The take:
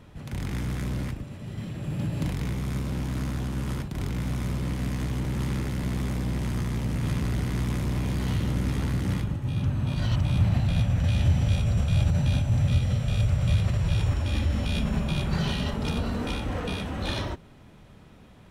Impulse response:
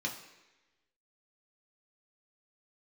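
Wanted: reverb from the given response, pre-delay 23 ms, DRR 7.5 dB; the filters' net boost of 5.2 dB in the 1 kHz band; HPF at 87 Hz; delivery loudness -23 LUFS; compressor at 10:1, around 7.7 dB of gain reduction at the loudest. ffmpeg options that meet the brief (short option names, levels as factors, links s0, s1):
-filter_complex "[0:a]highpass=87,equalizer=f=1000:t=o:g=6.5,acompressor=threshold=0.0398:ratio=10,asplit=2[s0][s1];[1:a]atrim=start_sample=2205,adelay=23[s2];[s1][s2]afir=irnorm=-1:irlink=0,volume=0.299[s3];[s0][s3]amix=inputs=2:normalize=0,volume=2.82"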